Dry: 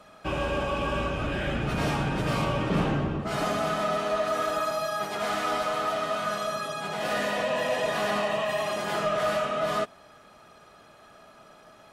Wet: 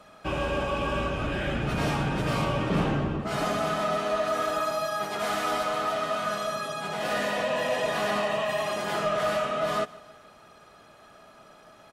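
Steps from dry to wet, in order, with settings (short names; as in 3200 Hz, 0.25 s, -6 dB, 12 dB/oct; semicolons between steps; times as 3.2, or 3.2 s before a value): 5.19–5.63 high shelf 9400 Hz +6 dB; feedback echo 0.154 s, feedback 52%, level -21.5 dB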